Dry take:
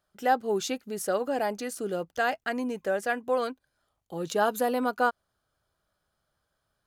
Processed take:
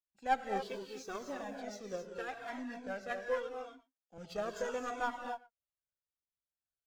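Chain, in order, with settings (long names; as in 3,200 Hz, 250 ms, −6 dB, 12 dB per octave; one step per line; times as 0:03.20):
hearing-aid frequency compression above 2,200 Hz 1.5 to 1
0:03.23–0:04.18: high-pass filter 180 Hz 24 dB per octave
slap from a distant wall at 20 metres, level −17 dB
rotating-speaker cabinet horn 5 Hz, later 1.1 Hz, at 0:03.70
in parallel at −7.5 dB: asymmetric clip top −32.5 dBFS
on the sum: power curve on the samples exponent 1.4
high-shelf EQ 6,500 Hz +5 dB
0:00.69–0:01.33: bit-depth reduction 10 bits, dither none
reverb whose tail is shaped and stops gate 290 ms rising, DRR 3.5 dB
flanger whose copies keep moving one way falling 0.78 Hz
level −3 dB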